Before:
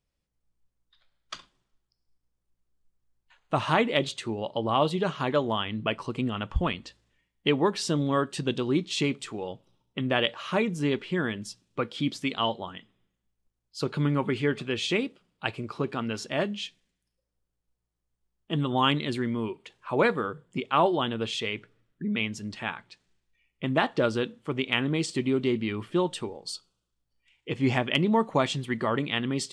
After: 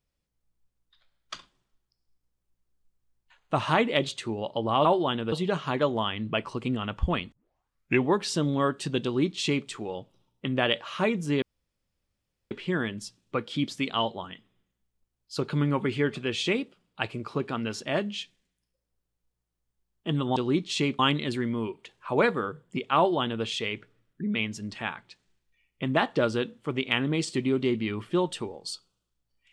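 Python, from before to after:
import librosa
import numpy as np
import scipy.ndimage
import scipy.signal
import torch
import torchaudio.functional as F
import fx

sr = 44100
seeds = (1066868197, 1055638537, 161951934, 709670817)

y = fx.edit(x, sr, fx.tape_start(start_s=6.85, length_s=0.75),
    fx.duplicate(start_s=8.57, length_s=0.63, to_s=18.8),
    fx.insert_room_tone(at_s=10.95, length_s=1.09),
    fx.duplicate(start_s=20.78, length_s=0.47, to_s=4.85), tone=tone)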